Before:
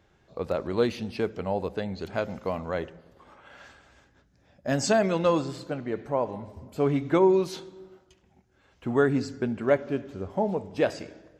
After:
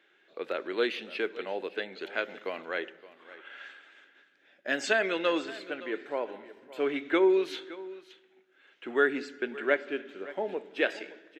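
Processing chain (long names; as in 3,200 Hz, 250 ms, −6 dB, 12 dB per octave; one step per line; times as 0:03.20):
four-pole ladder high-pass 290 Hz, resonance 45%
flat-topped bell 2,300 Hz +14.5 dB
single-tap delay 568 ms −17.5 dB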